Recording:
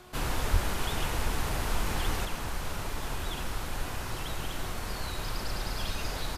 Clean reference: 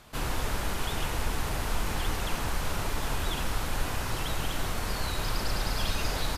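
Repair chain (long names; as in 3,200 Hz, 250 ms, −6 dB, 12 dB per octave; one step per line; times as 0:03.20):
hum removal 363.6 Hz, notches 4
0:00.52–0:00.64: high-pass filter 140 Hz 24 dB per octave
0:02.25: level correction +4 dB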